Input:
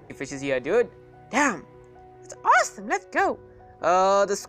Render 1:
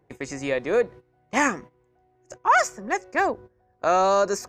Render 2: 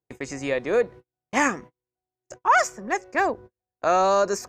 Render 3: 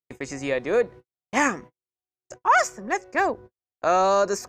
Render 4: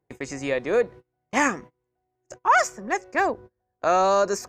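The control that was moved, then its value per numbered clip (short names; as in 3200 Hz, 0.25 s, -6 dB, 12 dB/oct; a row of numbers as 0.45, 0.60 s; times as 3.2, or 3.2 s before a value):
gate, range: -16, -43, -57, -30 dB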